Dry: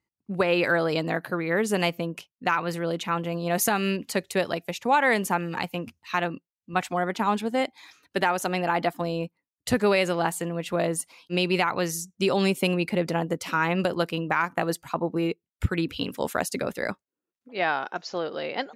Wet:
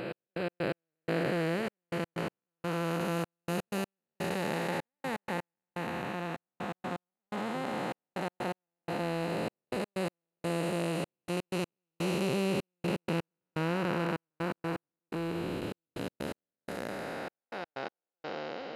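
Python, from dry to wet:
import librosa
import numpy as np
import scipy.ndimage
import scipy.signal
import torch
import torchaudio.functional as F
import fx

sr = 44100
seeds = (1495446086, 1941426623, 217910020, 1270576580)

y = fx.spec_blur(x, sr, span_ms=1270.0)
y = fx.step_gate(y, sr, bpm=125, pattern='x..x.x...xxxx', floor_db=-60.0, edge_ms=4.5)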